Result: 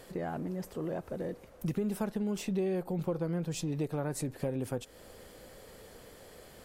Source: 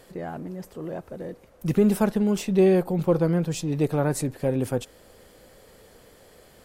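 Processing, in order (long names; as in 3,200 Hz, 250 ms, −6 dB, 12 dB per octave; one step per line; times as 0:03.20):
downward compressor 4 to 1, threshold −32 dBFS, peak gain reduction 14.5 dB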